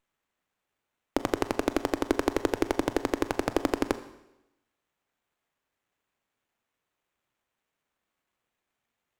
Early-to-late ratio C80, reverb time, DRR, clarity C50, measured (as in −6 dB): 15.5 dB, 0.95 s, 11.5 dB, 14.0 dB